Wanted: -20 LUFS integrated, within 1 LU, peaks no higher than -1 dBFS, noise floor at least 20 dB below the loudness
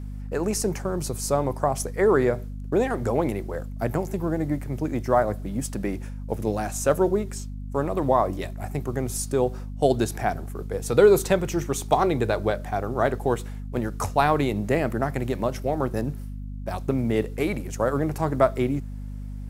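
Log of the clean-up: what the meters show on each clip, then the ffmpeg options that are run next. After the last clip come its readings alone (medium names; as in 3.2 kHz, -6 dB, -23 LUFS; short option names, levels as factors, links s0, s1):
hum 50 Hz; highest harmonic 250 Hz; hum level -31 dBFS; loudness -25.0 LUFS; peak level -4.5 dBFS; loudness target -20.0 LUFS
-> -af "bandreject=f=50:t=h:w=4,bandreject=f=100:t=h:w=4,bandreject=f=150:t=h:w=4,bandreject=f=200:t=h:w=4,bandreject=f=250:t=h:w=4"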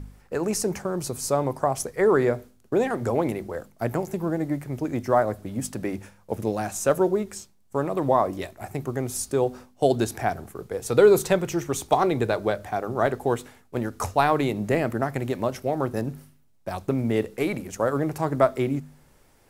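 hum not found; loudness -25.5 LUFS; peak level -4.5 dBFS; loudness target -20.0 LUFS
-> -af "volume=1.88,alimiter=limit=0.891:level=0:latency=1"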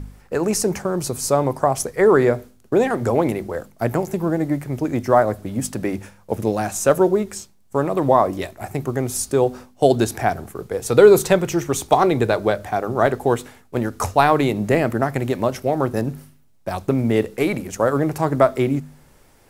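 loudness -20.0 LUFS; peak level -1.0 dBFS; noise floor -53 dBFS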